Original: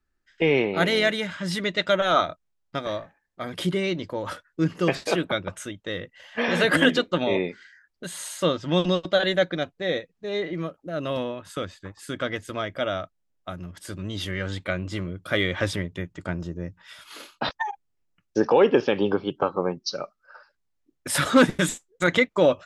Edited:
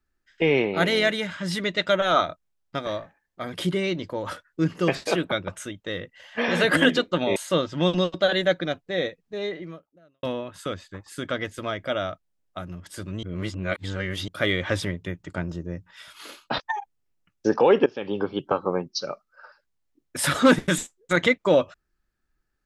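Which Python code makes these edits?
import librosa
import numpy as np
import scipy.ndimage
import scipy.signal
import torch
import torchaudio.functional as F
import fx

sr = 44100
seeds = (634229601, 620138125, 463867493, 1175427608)

y = fx.edit(x, sr, fx.cut(start_s=7.36, length_s=0.91),
    fx.fade_out_span(start_s=10.27, length_s=0.87, curve='qua'),
    fx.reverse_span(start_s=14.14, length_s=1.05),
    fx.fade_in_from(start_s=18.77, length_s=0.54, floor_db=-19.0), tone=tone)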